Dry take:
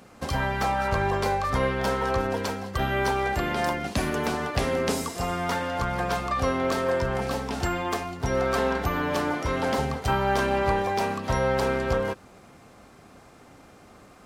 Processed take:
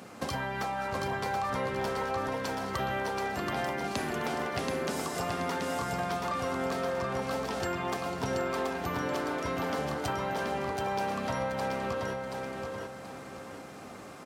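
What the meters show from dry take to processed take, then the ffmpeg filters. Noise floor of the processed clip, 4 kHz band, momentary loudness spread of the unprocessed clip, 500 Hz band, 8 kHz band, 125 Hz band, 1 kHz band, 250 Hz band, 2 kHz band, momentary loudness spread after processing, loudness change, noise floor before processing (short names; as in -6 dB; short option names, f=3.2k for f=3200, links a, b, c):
-45 dBFS, -5.0 dB, 4 LU, -6.0 dB, -4.5 dB, -8.5 dB, -5.5 dB, -5.5 dB, -6.0 dB, 6 LU, -6.5 dB, -51 dBFS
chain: -filter_complex "[0:a]highpass=120,acompressor=threshold=-35dB:ratio=6,asplit=2[a][b];[b]aecho=0:1:729|1458|2187|2916|3645:0.631|0.233|0.0864|0.032|0.0118[c];[a][c]amix=inputs=2:normalize=0,volume=3.5dB"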